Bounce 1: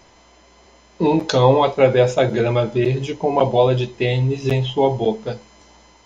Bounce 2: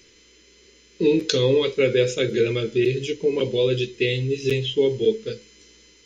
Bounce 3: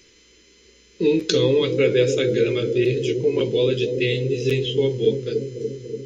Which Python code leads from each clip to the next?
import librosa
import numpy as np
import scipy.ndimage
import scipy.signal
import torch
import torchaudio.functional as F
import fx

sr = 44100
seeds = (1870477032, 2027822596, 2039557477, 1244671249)

y1 = fx.curve_eq(x, sr, hz=(180.0, 270.0, 460.0, 710.0, 1400.0, 2500.0), db=(0, 3, 9, -24, -1, 9))
y1 = F.gain(torch.from_numpy(y1), -7.5).numpy()
y2 = fx.echo_bbd(y1, sr, ms=288, stages=1024, feedback_pct=71, wet_db=-6.0)